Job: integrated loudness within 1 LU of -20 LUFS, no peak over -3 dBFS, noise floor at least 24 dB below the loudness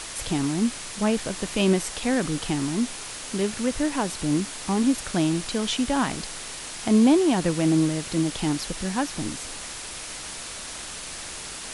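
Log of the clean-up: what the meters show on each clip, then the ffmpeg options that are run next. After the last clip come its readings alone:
noise floor -37 dBFS; noise floor target -50 dBFS; loudness -25.5 LUFS; peak -8.5 dBFS; loudness target -20.0 LUFS
-> -af "afftdn=nr=13:nf=-37"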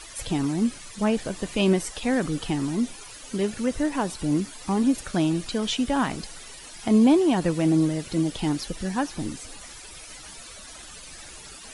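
noise floor -43 dBFS; noise floor target -49 dBFS
-> -af "afftdn=nr=6:nf=-43"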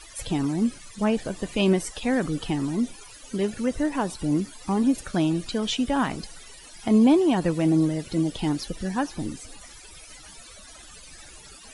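noise floor -46 dBFS; noise floor target -49 dBFS
-> -af "afftdn=nr=6:nf=-46"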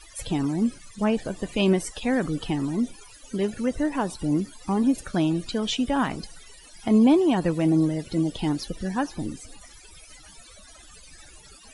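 noise floor -49 dBFS; loudness -25.0 LUFS; peak -8.5 dBFS; loudness target -20.0 LUFS
-> -af "volume=5dB"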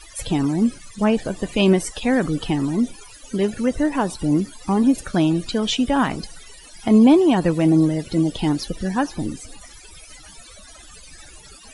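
loudness -20.0 LUFS; peak -3.5 dBFS; noise floor -44 dBFS

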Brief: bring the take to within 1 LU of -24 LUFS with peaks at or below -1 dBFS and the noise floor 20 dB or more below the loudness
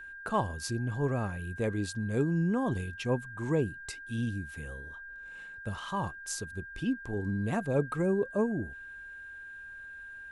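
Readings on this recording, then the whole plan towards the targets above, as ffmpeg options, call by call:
steady tone 1600 Hz; tone level -43 dBFS; loudness -33.0 LUFS; peak -15.5 dBFS; loudness target -24.0 LUFS
-> -af "bandreject=f=1.6k:w=30"
-af "volume=9dB"

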